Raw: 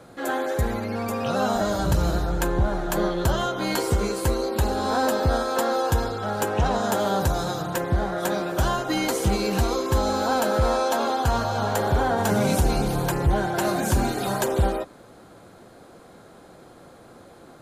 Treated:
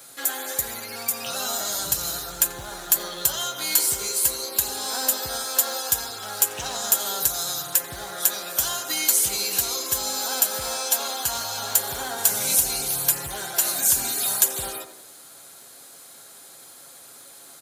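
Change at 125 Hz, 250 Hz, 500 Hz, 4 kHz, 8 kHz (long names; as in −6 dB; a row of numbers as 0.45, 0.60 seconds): −19.0, −16.5, −11.5, +6.0, +13.5 decibels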